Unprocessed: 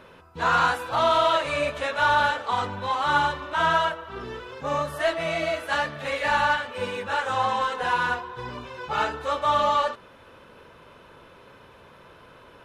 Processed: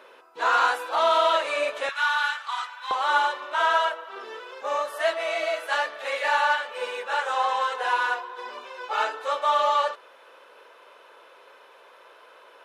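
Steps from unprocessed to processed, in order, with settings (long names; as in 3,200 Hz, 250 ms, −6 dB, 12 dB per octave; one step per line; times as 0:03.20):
high-pass filter 370 Hz 24 dB per octave, from 0:01.89 1,100 Hz, from 0:02.91 440 Hz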